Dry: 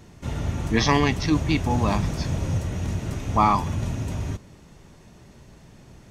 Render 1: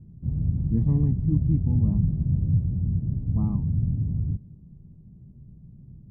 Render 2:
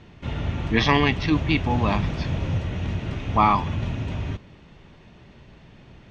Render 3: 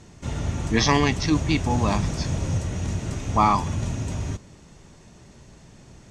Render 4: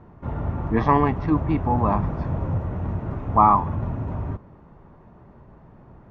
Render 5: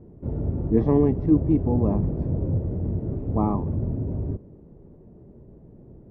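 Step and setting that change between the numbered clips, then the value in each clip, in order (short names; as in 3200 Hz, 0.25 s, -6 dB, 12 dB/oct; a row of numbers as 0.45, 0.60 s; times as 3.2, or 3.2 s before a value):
synth low-pass, frequency: 160, 3100, 7800, 1100, 430 Hz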